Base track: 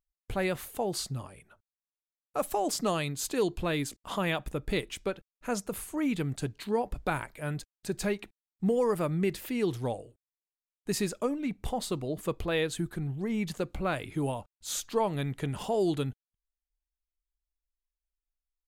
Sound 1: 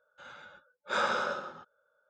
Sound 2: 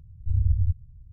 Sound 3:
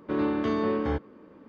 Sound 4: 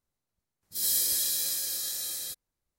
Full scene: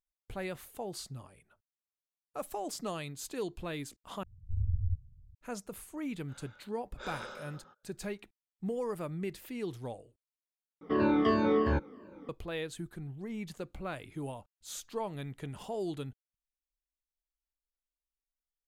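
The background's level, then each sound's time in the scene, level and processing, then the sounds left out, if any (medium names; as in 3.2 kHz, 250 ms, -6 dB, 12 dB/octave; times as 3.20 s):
base track -8.5 dB
4.23 s: replace with 2 -8.5 dB + hum notches 60/120/180/240/300/360/420 Hz
6.10 s: add 1 -9.5 dB + dynamic bell 1.1 kHz, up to -7 dB, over -44 dBFS, Q 0.85
10.81 s: replace with 3 -2.5 dB + drifting ripple filter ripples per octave 1.4, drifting -2.9 Hz, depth 17 dB
not used: 4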